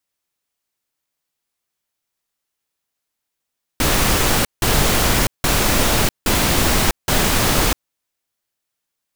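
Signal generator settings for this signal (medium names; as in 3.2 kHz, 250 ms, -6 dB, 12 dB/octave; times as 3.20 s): noise bursts pink, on 0.65 s, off 0.17 s, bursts 5, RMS -16 dBFS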